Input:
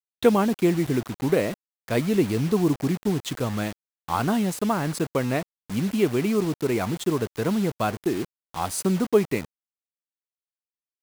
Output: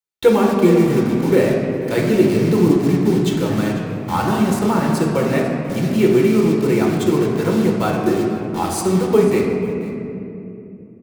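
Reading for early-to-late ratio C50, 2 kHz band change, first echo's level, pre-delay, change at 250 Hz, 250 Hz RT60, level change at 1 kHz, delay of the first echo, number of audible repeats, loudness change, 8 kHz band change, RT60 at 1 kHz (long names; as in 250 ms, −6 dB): 1.5 dB, +6.5 dB, −16.5 dB, 6 ms, +8.5 dB, 4.3 s, +6.5 dB, 495 ms, 1, +8.0 dB, +4.0 dB, 2.5 s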